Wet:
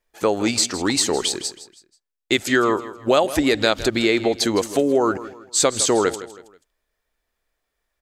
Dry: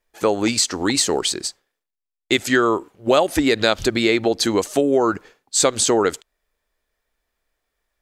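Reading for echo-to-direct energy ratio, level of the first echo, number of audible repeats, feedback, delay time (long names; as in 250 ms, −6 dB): −14.5 dB, −15.0 dB, 3, 37%, 161 ms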